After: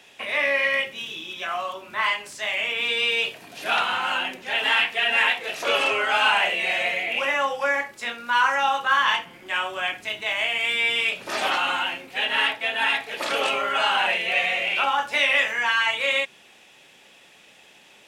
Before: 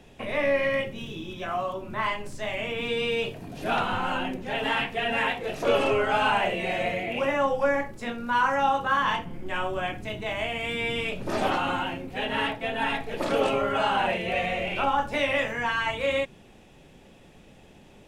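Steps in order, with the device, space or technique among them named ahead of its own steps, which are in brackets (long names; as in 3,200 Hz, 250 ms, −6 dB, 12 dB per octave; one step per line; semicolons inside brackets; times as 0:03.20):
filter by subtraction (in parallel: low-pass filter 2,500 Hz 12 dB per octave + polarity inversion)
on the sum: level +7 dB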